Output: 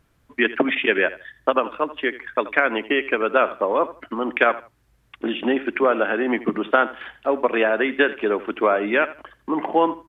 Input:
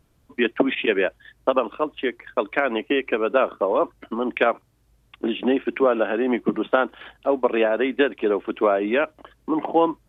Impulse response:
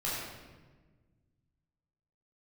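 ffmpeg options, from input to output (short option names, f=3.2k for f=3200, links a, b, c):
-filter_complex "[0:a]equalizer=f=1.7k:w=1.1:g=7.5,asplit=2[a][b];[b]aecho=0:1:82|164:0.15|0.0329[c];[a][c]amix=inputs=2:normalize=0,volume=-1dB"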